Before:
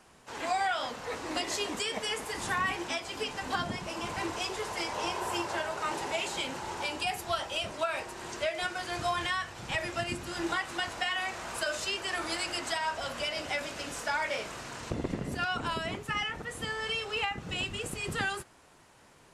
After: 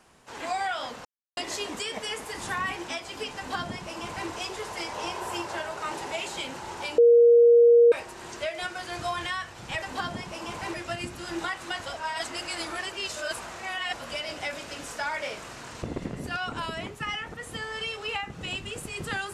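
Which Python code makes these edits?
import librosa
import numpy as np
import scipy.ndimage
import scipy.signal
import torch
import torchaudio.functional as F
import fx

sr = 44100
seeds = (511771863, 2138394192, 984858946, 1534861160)

y = fx.edit(x, sr, fx.silence(start_s=1.05, length_s=0.32),
    fx.duplicate(start_s=3.37, length_s=0.92, to_s=9.82),
    fx.bleep(start_s=6.98, length_s=0.94, hz=472.0, db=-12.5),
    fx.reverse_span(start_s=10.94, length_s=2.14), tone=tone)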